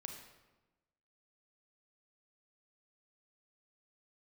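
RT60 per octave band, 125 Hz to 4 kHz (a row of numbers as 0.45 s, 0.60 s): 1.3 s, 1.3 s, 1.2 s, 1.1 s, 0.95 s, 0.80 s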